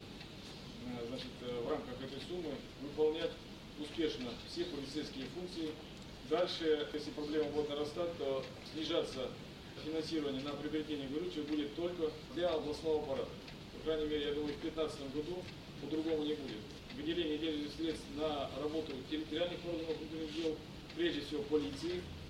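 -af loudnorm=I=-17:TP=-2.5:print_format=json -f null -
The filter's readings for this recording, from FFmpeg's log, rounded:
"input_i" : "-39.8",
"input_tp" : "-21.7",
"input_lra" : "1.8",
"input_thresh" : "-49.9",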